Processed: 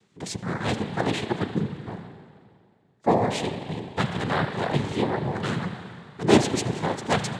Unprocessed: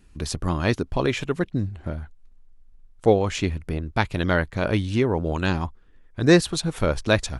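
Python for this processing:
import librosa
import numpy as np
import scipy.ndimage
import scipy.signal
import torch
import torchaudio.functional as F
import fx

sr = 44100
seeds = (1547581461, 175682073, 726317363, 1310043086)

y = fx.rev_spring(x, sr, rt60_s=2.2, pass_ms=(36,), chirp_ms=50, drr_db=6.5)
y = fx.noise_vocoder(y, sr, seeds[0], bands=6)
y = F.gain(torch.from_numpy(y), -2.5).numpy()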